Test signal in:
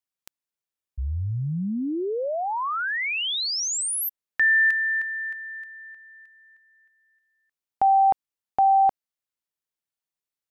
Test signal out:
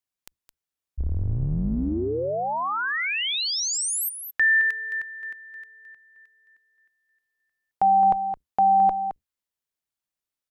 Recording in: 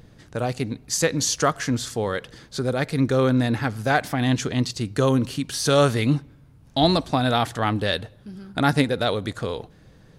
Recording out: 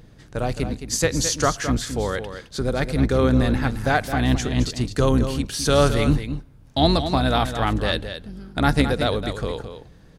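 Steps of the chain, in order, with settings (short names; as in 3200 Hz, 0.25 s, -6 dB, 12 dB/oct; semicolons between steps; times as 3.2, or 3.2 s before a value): octaver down 2 oct, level -2 dB; echo 0.216 s -9.5 dB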